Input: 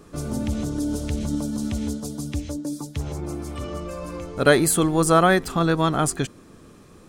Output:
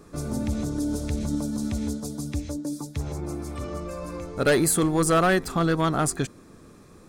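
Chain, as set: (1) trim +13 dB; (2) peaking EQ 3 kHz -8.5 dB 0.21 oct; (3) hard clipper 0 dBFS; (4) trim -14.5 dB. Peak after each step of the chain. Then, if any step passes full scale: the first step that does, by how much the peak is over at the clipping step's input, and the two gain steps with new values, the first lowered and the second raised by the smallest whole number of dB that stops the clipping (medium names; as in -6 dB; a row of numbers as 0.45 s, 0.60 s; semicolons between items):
+9.5 dBFS, +9.5 dBFS, 0.0 dBFS, -14.5 dBFS; step 1, 9.5 dB; step 1 +3 dB, step 4 -4.5 dB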